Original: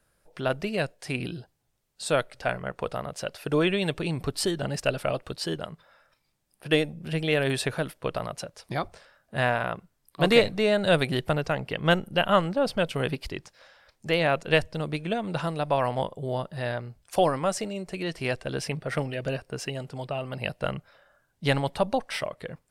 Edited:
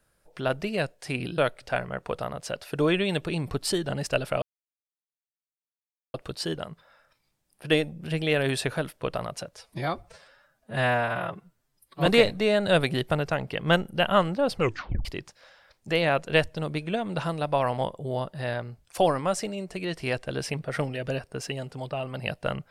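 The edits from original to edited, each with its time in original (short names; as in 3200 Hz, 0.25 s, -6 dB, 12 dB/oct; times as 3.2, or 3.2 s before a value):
1.38–2.11 cut
5.15 insert silence 1.72 s
8.58–10.24 stretch 1.5×
12.72 tape stop 0.51 s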